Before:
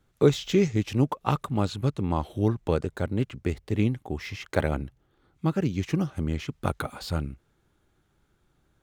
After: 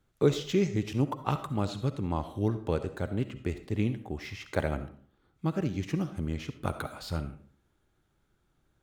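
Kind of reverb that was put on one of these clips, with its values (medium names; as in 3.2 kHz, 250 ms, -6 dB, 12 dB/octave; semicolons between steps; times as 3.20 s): algorithmic reverb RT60 0.49 s, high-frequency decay 0.65×, pre-delay 25 ms, DRR 10.5 dB; trim -4.5 dB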